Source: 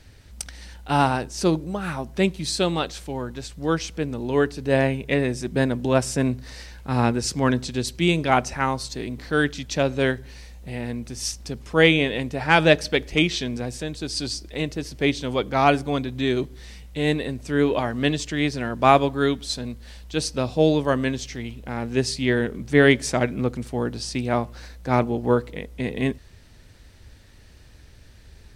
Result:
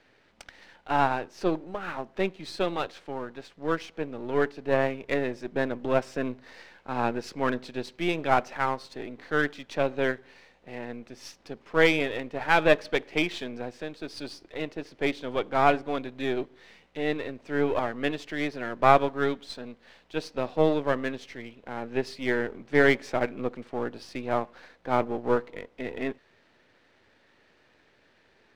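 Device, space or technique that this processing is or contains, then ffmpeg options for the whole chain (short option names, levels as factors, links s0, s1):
crystal radio: -af "highpass=350,lowpass=2600,aeval=exprs='if(lt(val(0),0),0.447*val(0),val(0))':c=same"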